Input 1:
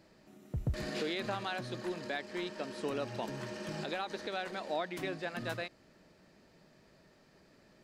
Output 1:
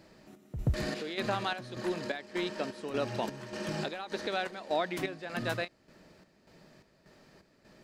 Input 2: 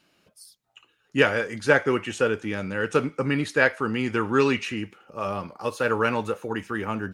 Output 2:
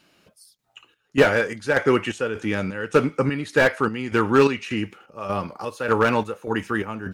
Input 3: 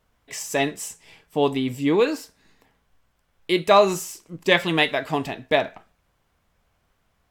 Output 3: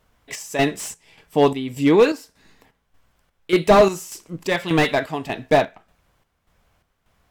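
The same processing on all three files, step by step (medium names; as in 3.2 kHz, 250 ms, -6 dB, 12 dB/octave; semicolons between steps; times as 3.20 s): square tremolo 1.7 Hz, depth 60%, duty 60%; slew-rate limiter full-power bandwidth 150 Hz; trim +5 dB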